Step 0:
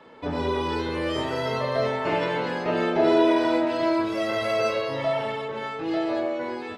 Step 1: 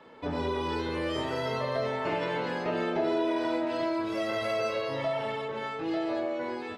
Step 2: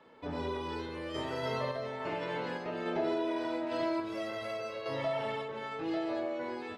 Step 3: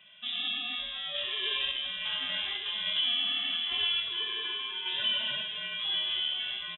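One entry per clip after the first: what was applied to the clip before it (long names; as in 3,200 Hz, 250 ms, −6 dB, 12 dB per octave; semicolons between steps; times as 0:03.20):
downward compressor 2.5 to 1, threshold −24 dBFS, peak gain reduction 6.5 dB; level −3 dB
sample-and-hold tremolo; level −2.5 dB
single-tap delay 1,157 ms −12.5 dB; voice inversion scrambler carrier 3,700 Hz; level +2.5 dB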